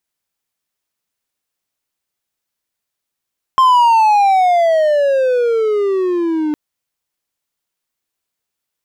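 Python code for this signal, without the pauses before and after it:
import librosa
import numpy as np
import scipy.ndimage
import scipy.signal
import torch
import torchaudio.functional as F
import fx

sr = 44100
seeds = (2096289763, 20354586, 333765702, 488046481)

y = fx.riser_tone(sr, length_s=2.96, level_db=-4.5, wave='triangle', hz=1060.0, rise_st=-22.0, swell_db=-8)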